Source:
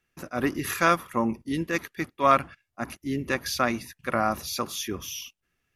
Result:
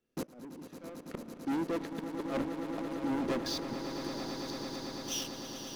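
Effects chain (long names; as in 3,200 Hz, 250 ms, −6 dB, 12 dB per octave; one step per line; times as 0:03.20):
treble cut that deepens with the level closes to 2,000 Hz, closed at −21 dBFS
graphic EQ with 10 bands 250 Hz +12 dB, 500 Hz +12 dB, 2,000 Hz −7 dB, 4,000 Hz +5 dB
leveller curve on the samples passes 3
0:01.45–0:03.73: downward compressor 3 to 1, threshold −21 dBFS, peak gain reduction 12.5 dB
gate with flip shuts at −12 dBFS, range −35 dB
shaped tremolo triangle 2.2 Hz, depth 50%
soft clipping −26 dBFS, distortion −9 dB
echo that builds up and dies away 111 ms, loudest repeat 8, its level −11 dB
level −4 dB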